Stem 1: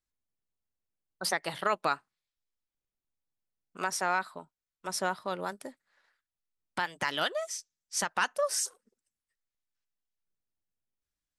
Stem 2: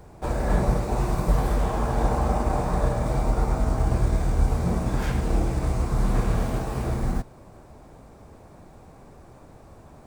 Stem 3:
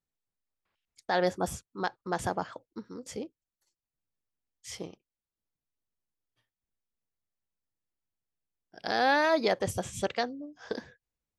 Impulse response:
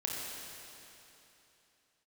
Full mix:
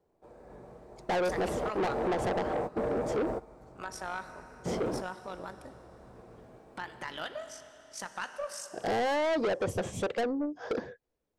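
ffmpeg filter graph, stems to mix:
-filter_complex "[0:a]tremolo=f=50:d=0.571,volume=0.501,asplit=2[s0][s1];[s1]volume=0.282[s2];[1:a]highpass=f=150:p=1,volume=0.251,asplit=2[s3][s4];[s4]volume=0.0944[s5];[2:a]volume=1.19,asplit=2[s6][s7];[s7]apad=whole_len=443808[s8];[s3][s8]sidechaingate=range=0.0562:threshold=0.00282:ratio=16:detection=peak[s9];[s9][s6]amix=inputs=2:normalize=0,equalizer=f=450:t=o:w=1.9:g=15,acompressor=threshold=0.158:ratio=6,volume=1[s10];[3:a]atrim=start_sample=2205[s11];[s2][s5]amix=inputs=2:normalize=0[s12];[s12][s11]afir=irnorm=-1:irlink=0[s13];[s0][s10][s13]amix=inputs=3:normalize=0,highshelf=f=4400:g=-6.5,asoftclip=type=tanh:threshold=0.0501"

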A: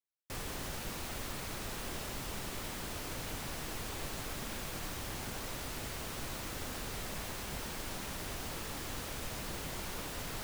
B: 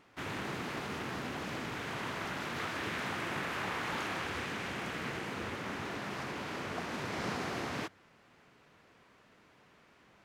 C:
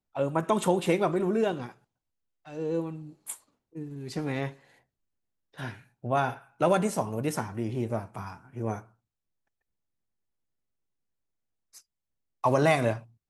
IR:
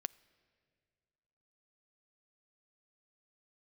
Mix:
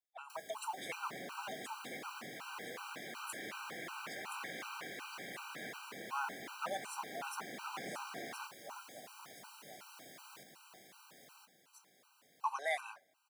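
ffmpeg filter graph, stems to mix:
-filter_complex "[0:a]acrossover=split=190|850|3200[s0][s1][s2][s3];[s0]acompressor=threshold=0.00251:ratio=4[s4];[s1]acompressor=threshold=0.00178:ratio=4[s5];[s2]acompressor=threshold=0.00158:ratio=4[s6];[s3]acompressor=threshold=0.00224:ratio=4[s7];[s4][s5][s6][s7]amix=inputs=4:normalize=0,volume=0.668,asplit=2[s8][s9];[s9]volume=0.668[s10];[1:a]adelay=600,volume=0.562[s11];[2:a]highpass=f=720:w=0.5412,highpass=f=720:w=1.3066,volume=0.335,asplit=3[s12][s13][s14];[s13]volume=0.422[s15];[s14]volume=0.631[s16];[3:a]atrim=start_sample=2205[s17];[s15][s17]afir=irnorm=-1:irlink=0[s18];[s10][s16]amix=inputs=2:normalize=0,aecho=0:1:1023|2046|3069|4092|5115:1|0.36|0.13|0.0467|0.0168[s19];[s8][s11][s12][s18][s19]amix=inputs=5:normalize=0,highpass=f=140:w=0.5412,highpass=f=140:w=1.3066,lowshelf=f=290:g=-8.5,afftfilt=real='re*gt(sin(2*PI*2.7*pts/sr)*(1-2*mod(floor(b*sr/1024/780),2)),0)':imag='im*gt(sin(2*PI*2.7*pts/sr)*(1-2*mod(floor(b*sr/1024/780),2)),0)':win_size=1024:overlap=0.75"

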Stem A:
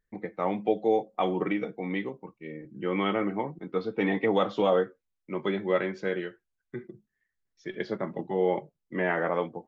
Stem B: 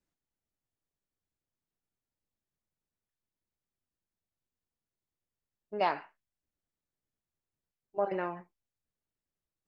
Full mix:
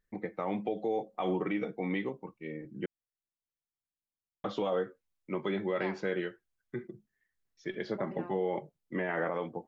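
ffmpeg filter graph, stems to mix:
-filter_complex "[0:a]volume=0.944,asplit=3[s0][s1][s2];[s0]atrim=end=2.86,asetpts=PTS-STARTPTS,afade=t=out:st=2.856:d=0.004:c=hsin[s3];[s1]atrim=start=2.86:end=4.44,asetpts=PTS-STARTPTS,volume=0[s4];[s2]atrim=start=4.44,asetpts=PTS-STARTPTS,afade=t=in:d=0.004:c=hsin[s5];[s3][s4][s5]concat=n=3:v=0:a=1[s6];[1:a]volume=0.251[s7];[s6][s7]amix=inputs=2:normalize=0,alimiter=limit=0.075:level=0:latency=1:release=70"

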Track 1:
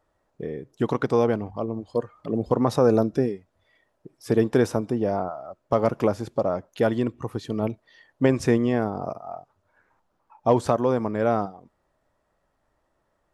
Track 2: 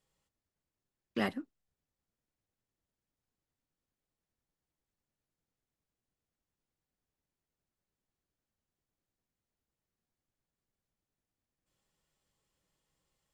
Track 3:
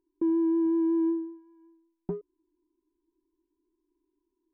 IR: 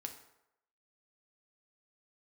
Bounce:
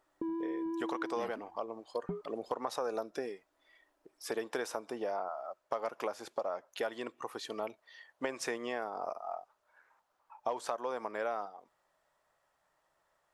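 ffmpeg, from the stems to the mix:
-filter_complex "[0:a]highpass=690,volume=0.944[s0];[1:a]volume=0.501[s1];[2:a]equalizer=f=340:t=o:w=0.21:g=-11.5,volume=0.891[s2];[s0][s1][s2]amix=inputs=3:normalize=0,acompressor=threshold=0.0224:ratio=4"

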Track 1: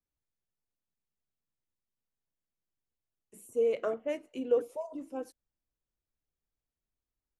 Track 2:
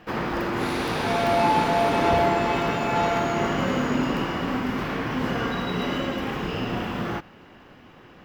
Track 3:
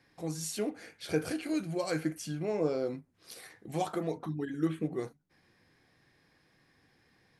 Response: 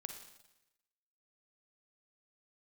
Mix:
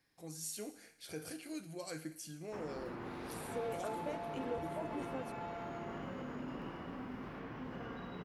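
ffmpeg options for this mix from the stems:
-filter_complex "[0:a]acompressor=threshold=0.0126:ratio=6,volume=0.841[s0];[1:a]adelay=2450,volume=0.119,asplit=2[s1][s2];[s2]volume=0.141[s3];[2:a]crystalizer=i=5:c=0,volume=0.178,asplit=2[s4][s5];[s5]volume=0.501[s6];[s1][s4]amix=inputs=2:normalize=0,highshelf=f=2800:g=-12,alimiter=level_in=3.98:limit=0.0631:level=0:latency=1:release=44,volume=0.251,volume=1[s7];[3:a]atrim=start_sample=2205[s8];[s3][s6]amix=inputs=2:normalize=0[s9];[s9][s8]afir=irnorm=-1:irlink=0[s10];[s0][s7][s10]amix=inputs=3:normalize=0"

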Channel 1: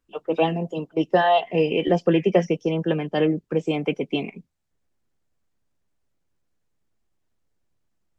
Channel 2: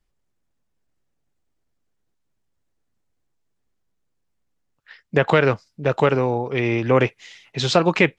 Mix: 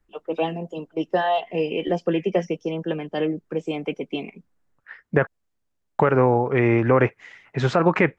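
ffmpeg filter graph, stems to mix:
-filter_complex "[0:a]deesser=0.8,equalizer=f=130:t=o:w=0.77:g=-4.5,volume=0.708[s0];[1:a]highshelf=f=2500:t=q:w=1.5:g=-14,volume=1.41,asplit=3[s1][s2][s3];[s1]atrim=end=5.27,asetpts=PTS-STARTPTS,afade=t=out:st=5.266:d=0.004:c=hsin[s4];[s2]atrim=start=5.27:end=5.99,asetpts=PTS-STARTPTS,volume=0[s5];[s3]atrim=start=5.99,asetpts=PTS-STARTPTS,afade=t=in:d=0.004:c=hsin[s6];[s4][s5][s6]concat=n=3:v=0:a=1[s7];[s0][s7]amix=inputs=2:normalize=0,alimiter=limit=0.501:level=0:latency=1:release=68"

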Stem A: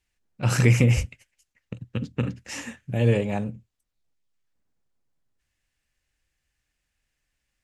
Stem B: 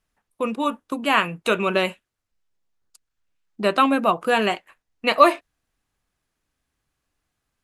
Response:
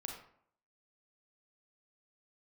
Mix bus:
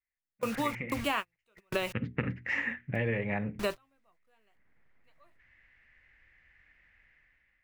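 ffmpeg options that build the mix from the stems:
-filter_complex "[0:a]bandreject=f=60:t=h:w=6,bandreject=f=120:t=h:w=6,bandreject=f=180:t=h:w=6,bandreject=f=240:t=h:w=6,bandreject=f=300:t=h:w=6,bandreject=f=360:t=h:w=6,bandreject=f=420:t=h:w=6,dynaudnorm=f=200:g=7:m=3.98,lowpass=f=2000:t=q:w=5.8,volume=0.75,afade=t=in:st=1.36:d=0.79:silence=0.251189,afade=t=in:st=4.45:d=0.39:silence=0.398107,asplit=2[s0][s1];[1:a]acrusher=bits=5:mix=0:aa=0.000001,asubboost=boost=11.5:cutoff=69,volume=0.596[s2];[s1]apad=whole_len=336488[s3];[s2][s3]sidechaingate=range=0.00501:threshold=0.00158:ratio=16:detection=peak[s4];[s0][s4]amix=inputs=2:normalize=0,acompressor=threshold=0.0447:ratio=6"

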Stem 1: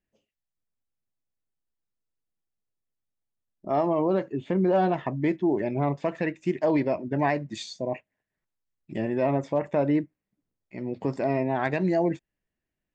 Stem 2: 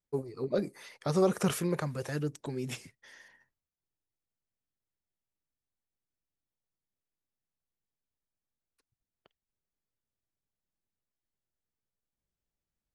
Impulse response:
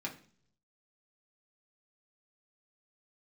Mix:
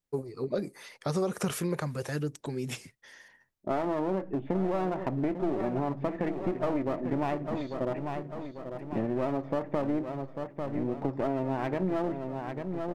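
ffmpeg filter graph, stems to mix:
-filter_complex "[0:a]agate=range=0.224:threshold=0.00794:ratio=16:detection=peak,lowpass=1400,aeval=exprs='clip(val(0),-1,0.0266)':c=same,volume=1.19,asplit=3[s0][s1][s2];[s1]volume=0.237[s3];[s2]volume=0.316[s4];[1:a]volume=1.26[s5];[2:a]atrim=start_sample=2205[s6];[s3][s6]afir=irnorm=-1:irlink=0[s7];[s4]aecho=0:1:845|1690|2535|3380|4225|5070|5915:1|0.49|0.24|0.118|0.0576|0.0282|0.0138[s8];[s0][s5][s7][s8]amix=inputs=4:normalize=0,acompressor=threshold=0.0501:ratio=4"

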